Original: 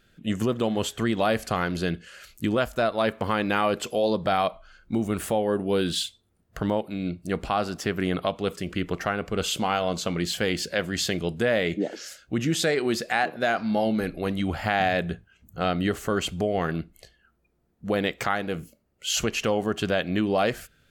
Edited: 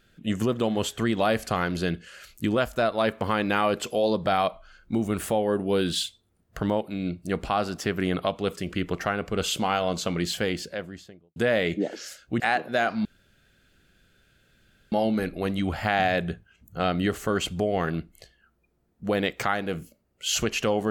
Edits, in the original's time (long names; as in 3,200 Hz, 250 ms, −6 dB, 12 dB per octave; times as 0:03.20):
0:10.23–0:11.36: fade out and dull
0:12.40–0:13.08: remove
0:13.73: splice in room tone 1.87 s